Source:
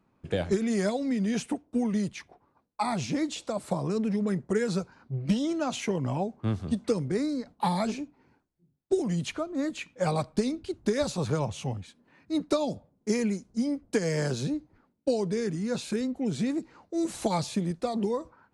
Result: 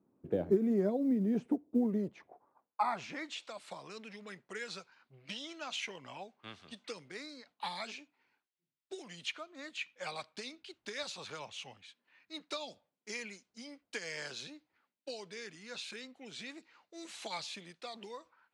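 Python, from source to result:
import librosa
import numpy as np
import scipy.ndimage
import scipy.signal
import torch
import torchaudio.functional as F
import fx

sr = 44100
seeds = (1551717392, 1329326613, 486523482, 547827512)

y = fx.filter_sweep_bandpass(x, sr, from_hz=330.0, to_hz=2900.0, start_s=1.8, end_s=3.59, q=1.3)
y = fx.quant_float(y, sr, bits=6)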